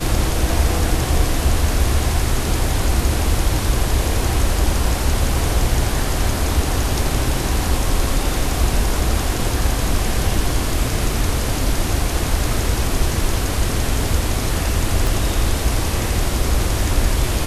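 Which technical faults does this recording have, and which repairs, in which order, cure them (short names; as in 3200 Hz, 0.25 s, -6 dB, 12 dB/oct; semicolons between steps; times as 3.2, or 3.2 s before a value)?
15.07 pop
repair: de-click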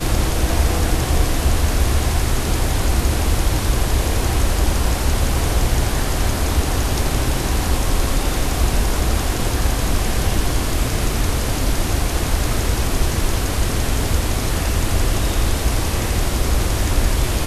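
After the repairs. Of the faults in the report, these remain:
15.07 pop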